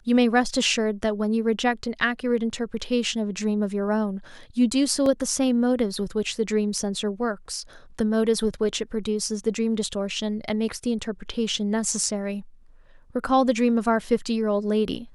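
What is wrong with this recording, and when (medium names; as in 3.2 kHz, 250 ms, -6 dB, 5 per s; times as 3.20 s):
5.06 s: dropout 2.5 ms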